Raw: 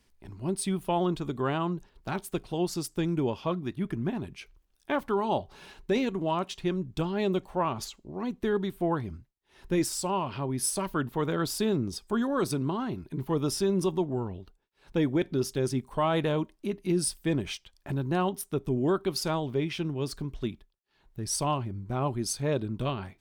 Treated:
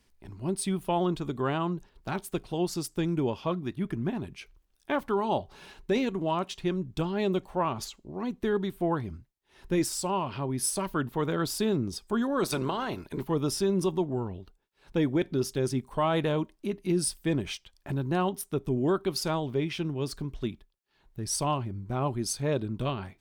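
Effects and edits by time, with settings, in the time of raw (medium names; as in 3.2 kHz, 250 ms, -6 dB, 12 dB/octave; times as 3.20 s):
12.43–13.22 s: spectral peaks clipped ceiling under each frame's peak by 16 dB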